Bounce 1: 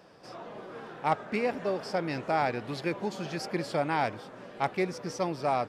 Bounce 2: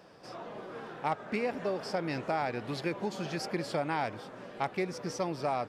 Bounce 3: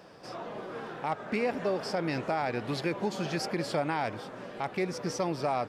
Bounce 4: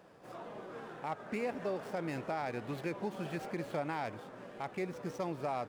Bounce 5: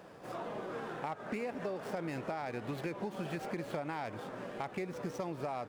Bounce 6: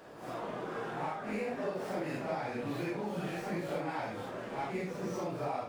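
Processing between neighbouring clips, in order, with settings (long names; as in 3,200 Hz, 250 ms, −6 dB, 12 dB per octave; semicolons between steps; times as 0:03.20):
downward compressor 2.5 to 1, threshold −29 dBFS, peak gain reduction 6 dB
brickwall limiter −23.5 dBFS, peak gain reduction 6.5 dB; level +3.5 dB
running median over 9 samples; level −6.5 dB
downward compressor, threshold −41 dBFS, peak gain reduction 9.5 dB; level +6 dB
random phases in long frames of 200 ms; level +2.5 dB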